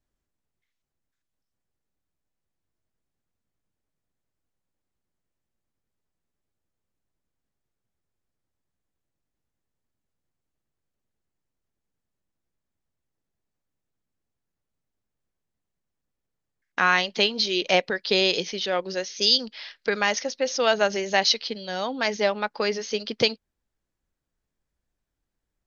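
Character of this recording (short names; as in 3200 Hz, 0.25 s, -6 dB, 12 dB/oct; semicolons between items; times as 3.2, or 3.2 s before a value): noise floor -83 dBFS; spectral tilt -2.0 dB/oct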